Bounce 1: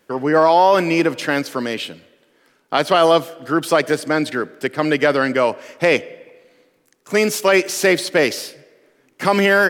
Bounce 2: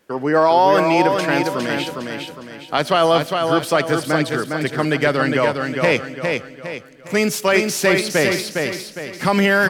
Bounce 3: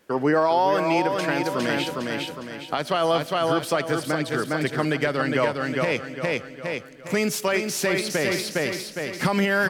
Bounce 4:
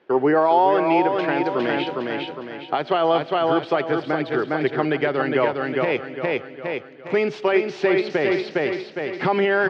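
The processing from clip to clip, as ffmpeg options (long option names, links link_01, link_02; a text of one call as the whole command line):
ffmpeg -i in.wav -filter_complex "[0:a]asplit=2[link_01][link_02];[link_02]aecho=0:1:408|816|1224|1632|2040:0.596|0.238|0.0953|0.0381|0.0152[link_03];[link_01][link_03]amix=inputs=2:normalize=0,asubboost=boost=3:cutoff=180,volume=-1dB" out.wav
ffmpeg -i in.wav -af "alimiter=limit=-11.5dB:level=0:latency=1:release=457" out.wav
ffmpeg -i in.wav -af "highpass=120,equalizer=frequency=200:width_type=q:width=4:gain=-5,equalizer=frequency=380:width_type=q:width=4:gain=9,equalizer=frequency=790:width_type=q:width=4:gain=7,lowpass=frequency=3600:width=0.5412,lowpass=frequency=3600:width=1.3066" out.wav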